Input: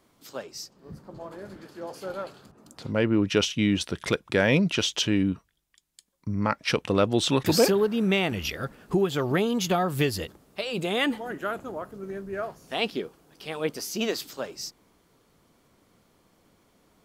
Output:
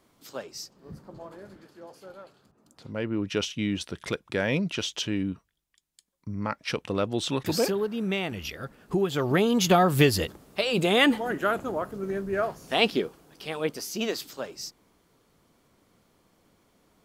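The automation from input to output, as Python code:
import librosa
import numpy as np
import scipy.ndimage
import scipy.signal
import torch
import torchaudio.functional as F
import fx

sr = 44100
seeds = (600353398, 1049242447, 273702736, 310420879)

y = fx.gain(x, sr, db=fx.line((0.99, -0.5), (2.21, -12.0), (3.39, -5.0), (8.65, -5.0), (9.76, 5.0), (12.94, 5.0), (13.84, -1.5)))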